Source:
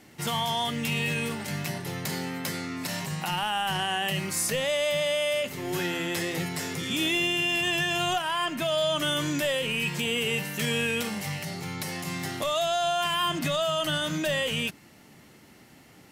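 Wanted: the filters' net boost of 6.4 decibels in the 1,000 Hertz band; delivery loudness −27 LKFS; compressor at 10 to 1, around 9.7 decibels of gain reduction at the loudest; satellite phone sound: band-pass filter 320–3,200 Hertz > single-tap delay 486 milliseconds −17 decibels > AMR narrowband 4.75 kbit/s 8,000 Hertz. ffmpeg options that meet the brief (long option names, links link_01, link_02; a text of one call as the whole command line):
ffmpeg -i in.wav -af "equalizer=frequency=1000:width_type=o:gain=8.5,acompressor=threshold=-28dB:ratio=10,highpass=320,lowpass=3200,aecho=1:1:486:0.141,volume=8dB" -ar 8000 -c:a libopencore_amrnb -b:a 4750 out.amr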